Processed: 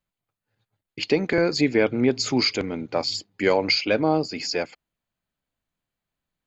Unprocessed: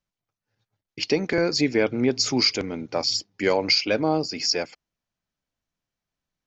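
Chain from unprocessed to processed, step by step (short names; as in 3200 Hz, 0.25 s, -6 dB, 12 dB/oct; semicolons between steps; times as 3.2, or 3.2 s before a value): bell 5600 Hz -15 dB 0.25 oct; gain +1.5 dB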